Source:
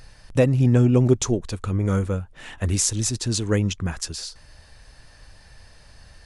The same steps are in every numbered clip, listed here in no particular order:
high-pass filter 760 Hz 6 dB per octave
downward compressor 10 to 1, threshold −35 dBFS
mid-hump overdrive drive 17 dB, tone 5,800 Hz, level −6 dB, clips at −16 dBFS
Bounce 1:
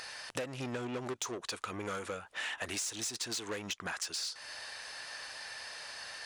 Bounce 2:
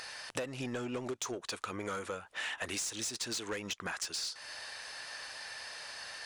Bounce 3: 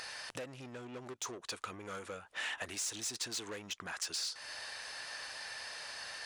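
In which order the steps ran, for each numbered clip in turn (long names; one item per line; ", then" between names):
mid-hump overdrive, then high-pass filter, then downward compressor
high-pass filter, then mid-hump overdrive, then downward compressor
mid-hump overdrive, then downward compressor, then high-pass filter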